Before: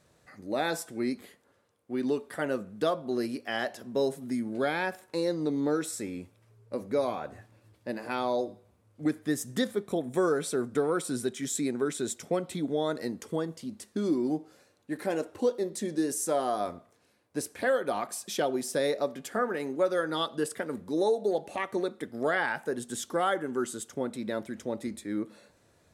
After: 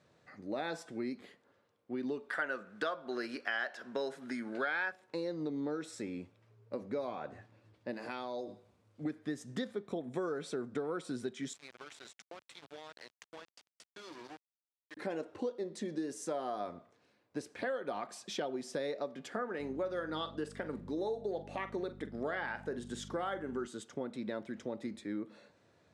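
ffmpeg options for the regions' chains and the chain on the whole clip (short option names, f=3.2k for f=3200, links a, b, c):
-filter_complex "[0:a]asettb=1/sr,asplit=3[a][b][c];[a]atrim=end=2.294[d];[b]atrim=start=2.29:end=4.92,asetpts=PTS-STARTPTS,afade=t=in:d=0.004:c=qsin,afade=t=out:st=2.626:d=0.004:c=qsin,highpass=f=800:p=1,equalizer=f=1.5k:w=2.6:g=10.5,acontrast=72[e];[c]atrim=start=4.916[f];[d][e]acrossfade=d=0.004:c1=hsin:c2=qsin[g];[g][f]acrossfade=d=0.004:c1=qsin:c2=hsin,asettb=1/sr,asplit=3[h][i][j];[h]atrim=end=7.934[k];[i]atrim=start=7.93:end=9.03,asetpts=PTS-STARTPTS,afade=t=in:d=0.004:c=qsin,afade=t=out:st=1.096:d=0.004:c=qsin,highshelf=f=4.1k:g=9.5,acompressor=threshold=-35dB:ratio=2.5:attack=3.2:release=140:knee=1:detection=peak[l];[j]atrim=start=9.026[m];[k][l]acrossfade=d=0.004:c1=hsin:c2=qsin[n];[n][m]acrossfade=d=0.004:c1=qsin:c2=hsin,asettb=1/sr,asplit=3[o][p][q];[o]atrim=end=11.534[r];[p]atrim=start=11.53:end=14.97,asetpts=PTS-STARTPTS,afade=t=in:d=0.004:c=qsin,afade=t=out:st=3.436:d=0.004:c=qsin,highpass=920,acompressor=threshold=-40dB:ratio=20:attack=3.2:release=140:knee=1:detection=peak,aeval=exprs='val(0)*gte(abs(val(0)),0.00668)':c=same[s];[q]atrim=start=14.966[t];[r][s]acrossfade=d=0.004:c1=hsin:c2=qsin[u];[u][t]acrossfade=d=0.004:c1=qsin:c2=hsin,asettb=1/sr,asplit=3[v][w][x];[v]atrim=end=19.594[y];[w]atrim=start=19.59:end=23.67,asetpts=PTS-STARTPTS,afade=t=in:d=0.004:c=qsin,afade=t=out:st=4.076:d=0.004:c=qsin,aeval=exprs='val(0)+0.01*(sin(2*PI*50*n/s)+sin(2*PI*2*50*n/s)/2+sin(2*PI*3*50*n/s)/3+sin(2*PI*4*50*n/s)/4+sin(2*PI*5*50*n/s)/5)':c=same,asplit=2[z][aa];[aa]adelay=45,volume=-13dB[ab];[z][ab]amix=inputs=2:normalize=0,atrim=end_sample=179928[ac];[x]atrim=start=23.666[ad];[y][ac]acrossfade=d=0.004:c1=hsin:c2=qsin[ae];[ae][ad]acrossfade=d=0.004:c1=qsin:c2=hsin,lowpass=4.8k,acompressor=threshold=-33dB:ratio=3,highpass=100,volume=-2.5dB"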